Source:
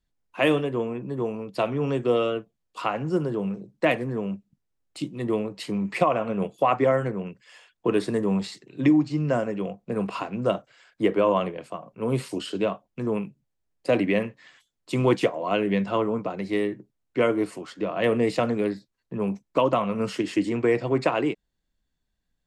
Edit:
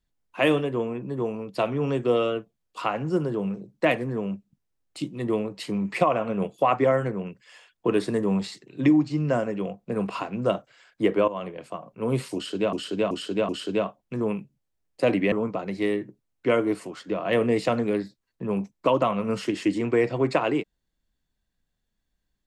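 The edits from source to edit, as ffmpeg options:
ffmpeg -i in.wav -filter_complex "[0:a]asplit=6[link_01][link_02][link_03][link_04][link_05][link_06];[link_01]atrim=end=11.28,asetpts=PTS-STARTPTS,afade=type=out:start_time=11.276:duration=0.004:curve=hsin:silence=0.158489[link_07];[link_02]atrim=start=11.28:end=12.732,asetpts=PTS-STARTPTS,afade=type=in:duration=0.41:silence=0.158489[link_08];[link_03]atrim=start=12.348:end=12.732[link_09];[link_04]atrim=start=12.348:end=12.732[link_10];[link_05]atrim=start=12.348:end=14.182[link_11];[link_06]atrim=start=16.028[link_12];[link_07][link_08]concat=n=2:v=0:a=1[link_13];[link_13][link_09]acrossfade=duration=0.004:curve1=hsin:curve2=hsin[link_14];[link_14][link_10]acrossfade=duration=0.004:curve1=hsin:curve2=hsin[link_15];[link_15][link_11]acrossfade=duration=0.004:curve1=hsin:curve2=hsin[link_16];[link_16][link_12]acrossfade=duration=0.004:curve1=hsin:curve2=hsin" out.wav

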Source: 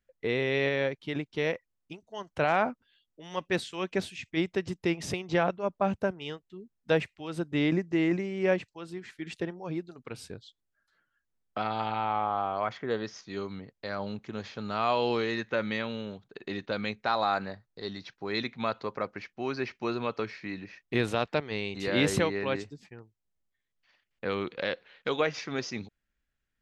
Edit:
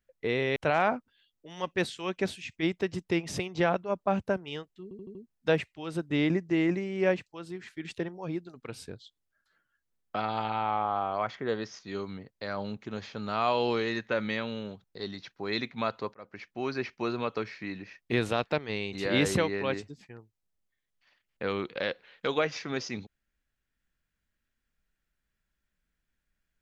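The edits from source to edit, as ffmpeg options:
ffmpeg -i in.wav -filter_complex "[0:a]asplit=8[link_01][link_02][link_03][link_04][link_05][link_06][link_07][link_08];[link_01]atrim=end=0.562[link_09];[link_02]atrim=start=2.298:end=6.652[link_10];[link_03]atrim=start=6.568:end=6.652[link_11];[link_04]atrim=start=6.568:end=6.652[link_12];[link_05]atrim=start=6.568:end=6.652[link_13];[link_06]atrim=start=6.568:end=16.262[link_14];[link_07]atrim=start=17.658:end=18.96,asetpts=PTS-STARTPTS,afade=type=out:start_time=1.298:duration=0.004:curve=hsin[link_15];[link_08]atrim=start=18.96,asetpts=PTS-STARTPTS,afade=type=in:duration=0.36[link_16];[link_09][link_10]acrossfade=duration=0.004:curve1=hsin:curve2=hsin[link_17];[link_17][link_11]acrossfade=duration=0.004:curve1=hsin:curve2=hsin[link_18];[link_18][link_12]acrossfade=duration=0.004:curve1=hsin:curve2=hsin[link_19];[link_19][link_13]acrossfade=duration=0.004:curve1=hsin:curve2=hsin[link_20];[link_20][link_14]acrossfade=duration=0.004:curve1=hsin:curve2=hsin[link_21];[link_15][link_16]concat=n=2:v=0:a=1[link_22];[link_21][link_22]acrossfade=duration=0.004:curve1=hsin:curve2=hsin" out.wav

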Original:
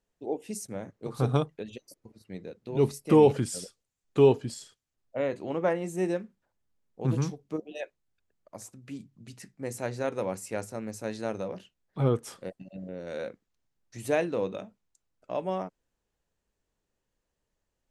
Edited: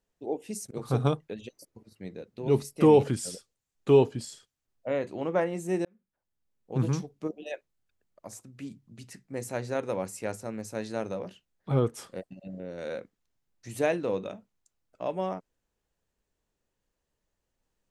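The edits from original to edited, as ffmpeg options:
ffmpeg -i in.wav -filter_complex "[0:a]asplit=3[link_01][link_02][link_03];[link_01]atrim=end=0.712[link_04];[link_02]atrim=start=0.998:end=6.14,asetpts=PTS-STARTPTS,afade=type=out:start_time=5.138:duration=0.004:curve=hsin[link_05];[link_03]atrim=start=6.14,asetpts=PTS-STARTPTS,afade=type=in:duration=0.94[link_06];[link_05][link_06]concat=n=2:v=0:a=1[link_07];[link_04][link_07]acrossfade=duration=0.004:curve1=hsin:curve2=hsin" out.wav

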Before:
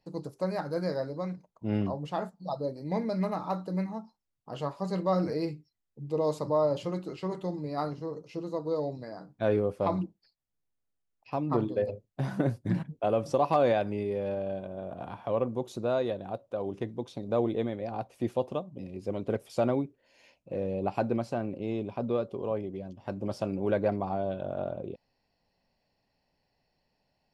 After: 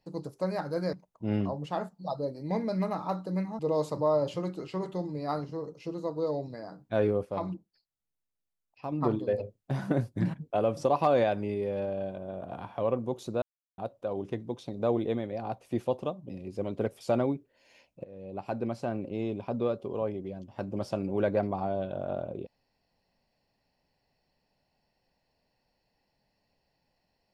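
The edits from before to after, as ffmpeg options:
ffmpeg -i in.wav -filter_complex "[0:a]asplit=8[link_01][link_02][link_03][link_04][link_05][link_06][link_07][link_08];[link_01]atrim=end=0.932[link_09];[link_02]atrim=start=1.338:end=4.002[link_10];[link_03]atrim=start=6.078:end=9.742[link_11];[link_04]atrim=start=9.738:end=11.412,asetpts=PTS-STARTPTS,volume=-5dB[link_12];[link_05]atrim=start=11.408:end=15.91,asetpts=PTS-STARTPTS,afade=type=out:start_time=4.498:duration=0.004:curve=hsin[link_13];[link_06]atrim=start=15.91:end=16.27,asetpts=PTS-STARTPTS,volume=0[link_14];[link_07]atrim=start=16.27:end=20.53,asetpts=PTS-STARTPTS,afade=type=in:duration=0.004:curve=hsin,afade=type=out:start_time=4.256:duration=0.004:curve=hsin:silence=0.0841395[link_15];[link_08]atrim=start=20.53,asetpts=PTS-STARTPTS,afade=type=in:duration=0.91:silence=0.0841395[link_16];[link_09][link_10]acrossfade=duration=0.004:curve1=hsin:curve2=hsin[link_17];[link_17][link_11]acrossfade=duration=0.004:curve1=hsin:curve2=hsin[link_18];[link_18][link_12]acrossfade=duration=0.004:curve1=hsin:curve2=hsin[link_19];[link_13][link_14][link_15][link_16]concat=n=4:v=0:a=1[link_20];[link_19][link_20]acrossfade=duration=0.004:curve1=hsin:curve2=hsin" out.wav

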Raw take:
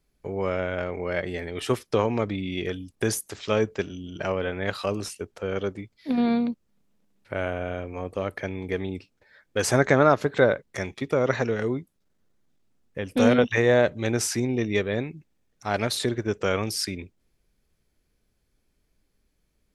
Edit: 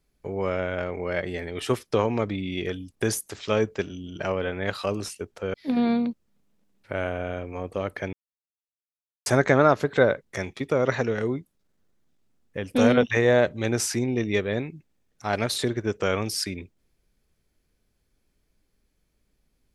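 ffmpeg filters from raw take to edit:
ffmpeg -i in.wav -filter_complex "[0:a]asplit=4[link_01][link_02][link_03][link_04];[link_01]atrim=end=5.542[link_05];[link_02]atrim=start=5.948:end=8.54,asetpts=PTS-STARTPTS,afade=type=out:start_time=2.588:duration=0.004:curve=hsin[link_06];[link_03]atrim=start=8.54:end=9.67,asetpts=PTS-STARTPTS,volume=0[link_07];[link_04]atrim=start=9.67,asetpts=PTS-STARTPTS,afade=type=in:duration=0.004:curve=hsin[link_08];[link_06][link_07][link_08]concat=n=3:v=0:a=1[link_09];[link_05][link_09]acrossfade=duration=0.004:curve1=hsin:curve2=hsin" out.wav

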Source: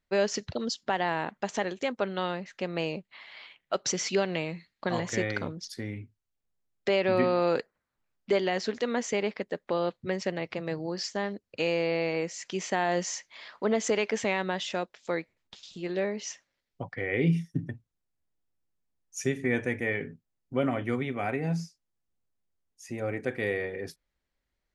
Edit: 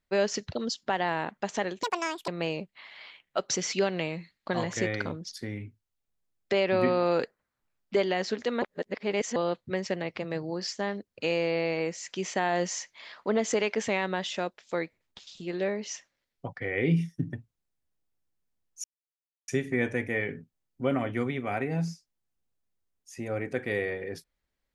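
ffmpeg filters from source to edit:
ffmpeg -i in.wav -filter_complex "[0:a]asplit=6[link_01][link_02][link_03][link_04][link_05][link_06];[link_01]atrim=end=1.834[link_07];[link_02]atrim=start=1.83:end=2.64,asetpts=PTS-STARTPTS,asetrate=79380,aresample=44100[link_08];[link_03]atrim=start=2.636:end=8.982[link_09];[link_04]atrim=start=8.978:end=9.722,asetpts=PTS-STARTPTS,areverse[link_10];[link_05]atrim=start=9.718:end=19.2,asetpts=PTS-STARTPTS,afade=type=out:start_time=9.478:duration=0.004:curve=hsin,apad=pad_dur=0.64[link_11];[link_06]atrim=start=19.2,asetpts=PTS-STARTPTS,afade=type=in:duration=0.004:curve=hsin[link_12];[link_07][link_08]acrossfade=duration=0.004:curve1=hsin:curve2=hsin[link_13];[link_13][link_09]acrossfade=duration=0.004:curve1=hsin:curve2=hsin[link_14];[link_14][link_10]acrossfade=duration=0.004:curve1=hsin:curve2=hsin[link_15];[link_11][link_12]concat=n=2:v=0:a=1[link_16];[link_15][link_16]acrossfade=duration=0.004:curve1=hsin:curve2=hsin" out.wav

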